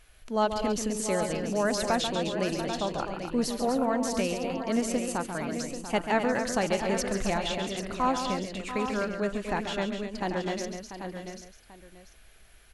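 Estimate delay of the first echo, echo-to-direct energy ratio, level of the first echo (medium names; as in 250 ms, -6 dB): 138 ms, -2.5 dB, -8.0 dB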